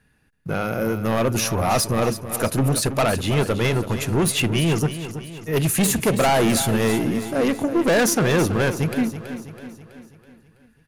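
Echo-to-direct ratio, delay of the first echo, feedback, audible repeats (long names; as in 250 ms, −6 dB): −10.0 dB, 327 ms, 52%, 5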